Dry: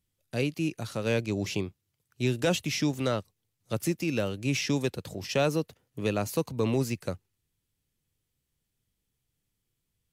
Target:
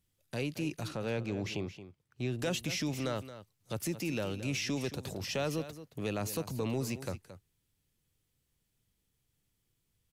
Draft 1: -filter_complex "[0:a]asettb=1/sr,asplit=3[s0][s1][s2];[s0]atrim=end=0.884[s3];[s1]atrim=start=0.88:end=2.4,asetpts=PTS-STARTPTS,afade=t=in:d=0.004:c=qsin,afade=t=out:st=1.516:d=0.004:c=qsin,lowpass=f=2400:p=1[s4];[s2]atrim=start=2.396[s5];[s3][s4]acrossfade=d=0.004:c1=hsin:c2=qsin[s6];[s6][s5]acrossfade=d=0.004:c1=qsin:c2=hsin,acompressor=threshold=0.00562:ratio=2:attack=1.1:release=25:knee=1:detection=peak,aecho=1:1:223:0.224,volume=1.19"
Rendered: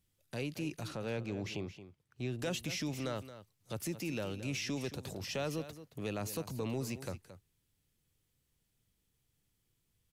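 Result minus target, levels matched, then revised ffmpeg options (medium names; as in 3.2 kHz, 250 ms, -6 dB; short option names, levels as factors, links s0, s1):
compression: peak gain reduction +3.5 dB
-filter_complex "[0:a]asettb=1/sr,asplit=3[s0][s1][s2];[s0]atrim=end=0.884[s3];[s1]atrim=start=0.88:end=2.4,asetpts=PTS-STARTPTS,afade=t=in:d=0.004:c=qsin,afade=t=out:st=1.516:d=0.004:c=qsin,lowpass=f=2400:p=1[s4];[s2]atrim=start=2.396[s5];[s3][s4]acrossfade=d=0.004:c1=hsin:c2=qsin[s6];[s6][s5]acrossfade=d=0.004:c1=qsin:c2=hsin,acompressor=threshold=0.0119:ratio=2:attack=1.1:release=25:knee=1:detection=peak,aecho=1:1:223:0.224,volume=1.19"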